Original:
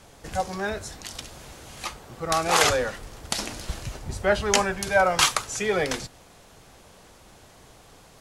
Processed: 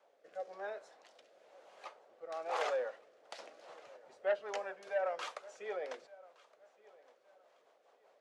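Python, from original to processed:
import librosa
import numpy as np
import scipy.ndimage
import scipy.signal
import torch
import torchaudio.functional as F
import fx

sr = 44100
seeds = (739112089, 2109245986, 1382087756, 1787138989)

y = fx.ladder_bandpass(x, sr, hz=650.0, resonance_pct=50)
y = fx.low_shelf(y, sr, hz=430.0, db=12.0)
y = fx.rotary_switch(y, sr, hz=1.0, then_hz=5.0, switch_at_s=2.94)
y = np.diff(y, prepend=0.0)
y = fx.echo_feedback(y, sr, ms=1167, feedback_pct=29, wet_db=-23)
y = fx.transformer_sat(y, sr, knee_hz=840.0)
y = F.gain(torch.from_numpy(y), 14.5).numpy()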